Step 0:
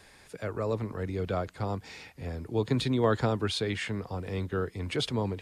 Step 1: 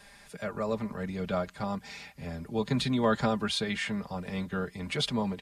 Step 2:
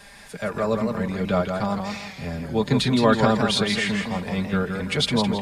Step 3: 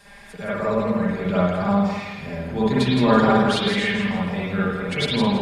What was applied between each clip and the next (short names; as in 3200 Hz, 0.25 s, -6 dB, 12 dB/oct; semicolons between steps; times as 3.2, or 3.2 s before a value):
bell 390 Hz -14 dB 0.24 oct; comb 5 ms, depth 73%
warbling echo 0.164 s, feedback 34%, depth 110 cents, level -5.5 dB; gain +7.5 dB
reverb RT60 0.80 s, pre-delay 50 ms, DRR -6 dB; gain -5.5 dB